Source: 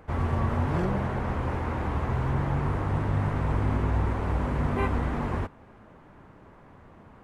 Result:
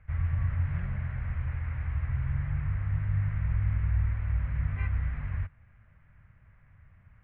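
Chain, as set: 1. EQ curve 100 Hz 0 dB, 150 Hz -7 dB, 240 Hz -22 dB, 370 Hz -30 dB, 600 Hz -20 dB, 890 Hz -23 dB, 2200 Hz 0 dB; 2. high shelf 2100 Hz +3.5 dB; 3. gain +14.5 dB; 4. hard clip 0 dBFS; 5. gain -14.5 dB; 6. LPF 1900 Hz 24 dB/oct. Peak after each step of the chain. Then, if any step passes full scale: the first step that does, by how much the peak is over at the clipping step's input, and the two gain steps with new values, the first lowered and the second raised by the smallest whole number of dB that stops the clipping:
-17.5, -17.5, -3.0, -3.0, -17.5, -18.0 dBFS; no overload

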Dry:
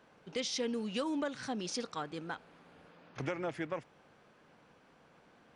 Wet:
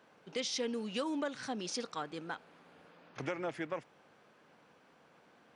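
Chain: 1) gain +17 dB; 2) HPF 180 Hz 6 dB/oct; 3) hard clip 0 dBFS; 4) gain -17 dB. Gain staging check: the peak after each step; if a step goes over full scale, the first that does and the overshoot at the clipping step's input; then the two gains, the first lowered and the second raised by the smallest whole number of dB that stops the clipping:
-5.5, -5.0, -5.0, -22.0 dBFS; no overload

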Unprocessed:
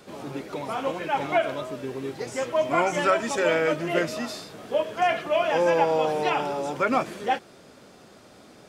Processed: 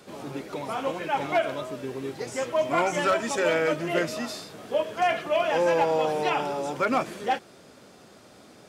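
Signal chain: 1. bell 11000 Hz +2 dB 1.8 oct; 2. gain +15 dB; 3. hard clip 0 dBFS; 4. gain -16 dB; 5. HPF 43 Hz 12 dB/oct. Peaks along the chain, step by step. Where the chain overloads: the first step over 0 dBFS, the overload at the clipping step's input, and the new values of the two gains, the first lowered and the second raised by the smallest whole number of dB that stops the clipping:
-8.0, +7.0, 0.0, -16.0, -15.0 dBFS; step 2, 7.0 dB; step 2 +8 dB, step 4 -9 dB

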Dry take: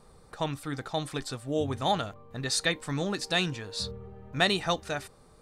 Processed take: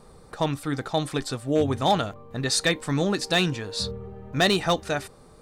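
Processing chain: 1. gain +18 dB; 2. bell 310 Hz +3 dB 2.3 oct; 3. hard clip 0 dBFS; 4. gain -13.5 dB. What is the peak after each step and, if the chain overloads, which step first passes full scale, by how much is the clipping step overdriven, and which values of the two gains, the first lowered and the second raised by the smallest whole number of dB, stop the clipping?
+7.5, +7.5, 0.0, -13.5 dBFS; step 1, 7.5 dB; step 1 +10 dB, step 4 -5.5 dB

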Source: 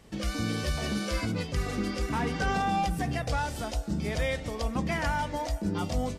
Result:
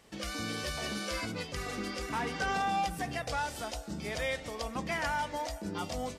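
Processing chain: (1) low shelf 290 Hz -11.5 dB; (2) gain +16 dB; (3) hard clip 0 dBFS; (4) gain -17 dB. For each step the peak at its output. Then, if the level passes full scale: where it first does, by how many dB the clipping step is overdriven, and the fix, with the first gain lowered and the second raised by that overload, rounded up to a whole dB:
-20.0, -4.0, -4.0, -21.0 dBFS; no overload

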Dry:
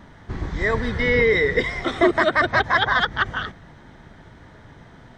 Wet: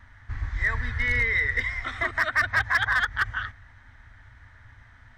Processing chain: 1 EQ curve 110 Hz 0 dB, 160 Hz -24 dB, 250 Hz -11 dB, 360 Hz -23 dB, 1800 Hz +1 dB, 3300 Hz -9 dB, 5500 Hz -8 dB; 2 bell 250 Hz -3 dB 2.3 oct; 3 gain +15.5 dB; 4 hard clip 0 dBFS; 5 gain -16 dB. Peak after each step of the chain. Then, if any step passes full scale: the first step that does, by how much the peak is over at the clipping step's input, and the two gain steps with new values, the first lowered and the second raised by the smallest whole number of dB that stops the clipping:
-10.0, -10.0, +5.5, 0.0, -16.0 dBFS; step 3, 5.5 dB; step 3 +9.5 dB, step 5 -10 dB

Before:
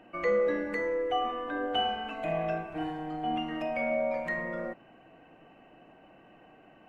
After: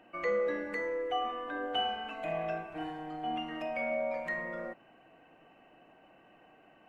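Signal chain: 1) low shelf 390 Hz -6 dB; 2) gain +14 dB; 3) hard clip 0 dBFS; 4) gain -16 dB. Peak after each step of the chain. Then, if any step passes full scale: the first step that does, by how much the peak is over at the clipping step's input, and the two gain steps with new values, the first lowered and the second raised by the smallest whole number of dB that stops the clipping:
-18.5, -4.5, -4.5, -20.5 dBFS; no overload

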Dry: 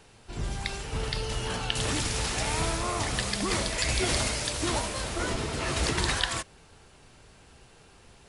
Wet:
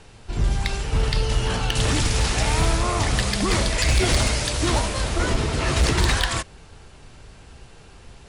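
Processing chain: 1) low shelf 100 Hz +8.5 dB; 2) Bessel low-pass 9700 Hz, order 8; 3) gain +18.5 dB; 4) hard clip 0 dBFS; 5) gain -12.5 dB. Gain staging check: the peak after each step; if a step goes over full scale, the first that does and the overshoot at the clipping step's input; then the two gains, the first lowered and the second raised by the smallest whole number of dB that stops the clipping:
-8.5, -8.5, +10.0, 0.0, -12.5 dBFS; step 3, 10.0 dB; step 3 +8.5 dB, step 5 -2.5 dB

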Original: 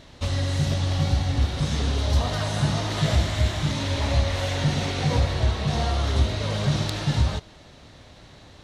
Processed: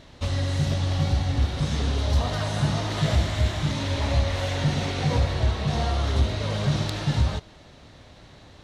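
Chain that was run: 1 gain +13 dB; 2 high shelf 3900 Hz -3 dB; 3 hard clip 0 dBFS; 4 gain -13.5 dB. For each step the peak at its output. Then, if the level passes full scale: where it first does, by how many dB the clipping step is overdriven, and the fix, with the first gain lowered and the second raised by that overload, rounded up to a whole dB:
+3.5, +3.5, 0.0, -13.5 dBFS; step 1, 3.5 dB; step 1 +9 dB, step 4 -9.5 dB

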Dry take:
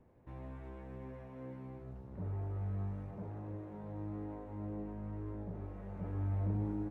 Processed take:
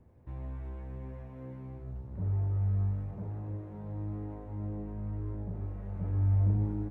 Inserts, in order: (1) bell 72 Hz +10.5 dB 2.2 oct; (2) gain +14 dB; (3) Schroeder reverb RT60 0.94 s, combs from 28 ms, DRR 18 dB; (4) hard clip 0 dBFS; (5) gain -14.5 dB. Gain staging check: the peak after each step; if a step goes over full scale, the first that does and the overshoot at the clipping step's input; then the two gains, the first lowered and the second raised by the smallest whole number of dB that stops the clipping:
-19.0, -5.0, -4.5, -4.5, -19.0 dBFS; no overload

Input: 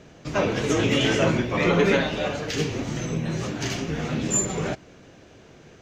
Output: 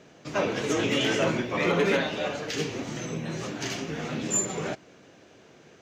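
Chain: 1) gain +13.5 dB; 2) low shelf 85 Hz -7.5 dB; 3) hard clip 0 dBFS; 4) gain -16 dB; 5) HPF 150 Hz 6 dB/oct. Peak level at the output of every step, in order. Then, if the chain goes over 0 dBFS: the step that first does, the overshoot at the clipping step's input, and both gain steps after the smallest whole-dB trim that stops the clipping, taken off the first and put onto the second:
+6.0, +5.0, 0.0, -16.0, -14.0 dBFS; step 1, 5.0 dB; step 1 +8.5 dB, step 4 -11 dB

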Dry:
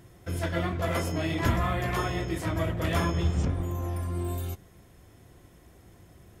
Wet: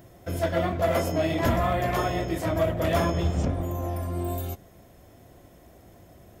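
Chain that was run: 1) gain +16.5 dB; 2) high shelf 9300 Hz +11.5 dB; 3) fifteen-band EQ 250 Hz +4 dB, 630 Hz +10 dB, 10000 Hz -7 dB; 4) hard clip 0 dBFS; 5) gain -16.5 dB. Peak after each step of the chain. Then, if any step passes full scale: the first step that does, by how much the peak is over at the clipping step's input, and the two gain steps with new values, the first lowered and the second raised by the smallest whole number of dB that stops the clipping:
+3.0, +3.5, +5.5, 0.0, -16.5 dBFS; step 1, 5.5 dB; step 1 +10.5 dB, step 5 -10.5 dB

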